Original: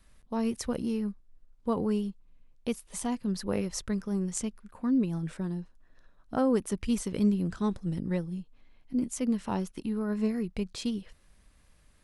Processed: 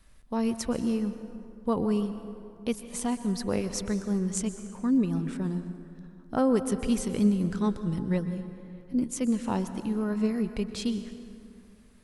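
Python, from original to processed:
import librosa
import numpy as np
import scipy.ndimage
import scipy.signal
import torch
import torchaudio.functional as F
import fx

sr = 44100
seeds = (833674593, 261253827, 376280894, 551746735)

y = fx.rev_plate(x, sr, seeds[0], rt60_s=2.5, hf_ratio=0.5, predelay_ms=110, drr_db=10.0)
y = y * 10.0 ** (2.0 / 20.0)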